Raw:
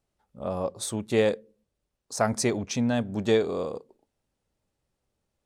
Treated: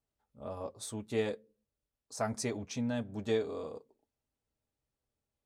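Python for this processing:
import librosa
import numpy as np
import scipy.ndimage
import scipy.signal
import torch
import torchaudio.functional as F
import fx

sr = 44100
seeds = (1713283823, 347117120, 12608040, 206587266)

y = fx.notch_comb(x, sr, f0_hz=180.0)
y = F.gain(torch.from_numpy(y), -8.5).numpy()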